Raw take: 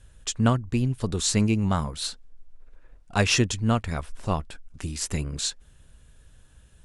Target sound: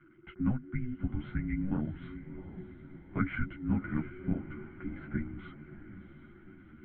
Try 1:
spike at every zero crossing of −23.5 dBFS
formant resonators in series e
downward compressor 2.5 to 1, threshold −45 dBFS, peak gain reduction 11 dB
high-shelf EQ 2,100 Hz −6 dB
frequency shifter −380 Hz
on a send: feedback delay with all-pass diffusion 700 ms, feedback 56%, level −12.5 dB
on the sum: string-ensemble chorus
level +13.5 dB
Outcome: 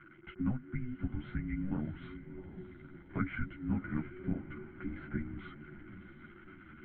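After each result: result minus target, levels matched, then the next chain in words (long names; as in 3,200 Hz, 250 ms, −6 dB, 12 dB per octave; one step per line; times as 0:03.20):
spike at every zero crossing: distortion +9 dB; downward compressor: peak gain reduction +3.5 dB
spike at every zero crossing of −33 dBFS
formant resonators in series e
downward compressor 2.5 to 1, threshold −45 dBFS, peak gain reduction 11 dB
high-shelf EQ 2,100 Hz −6 dB
frequency shifter −380 Hz
on a send: feedback delay with all-pass diffusion 700 ms, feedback 56%, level −12.5 dB
on the sum: string-ensemble chorus
level +13.5 dB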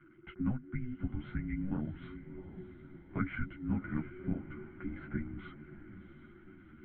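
downward compressor: peak gain reduction +3.5 dB
spike at every zero crossing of −33 dBFS
formant resonators in series e
downward compressor 2.5 to 1, threshold −39 dBFS, peak gain reduction 7.5 dB
high-shelf EQ 2,100 Hz −6 dB
frequency shifter −380 Hz
on a send: feedback delay with all-pass diffusion 700 ms, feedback 56%, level −12.5 dB
on the sum: string-ensemble chorus
level +13.5 dB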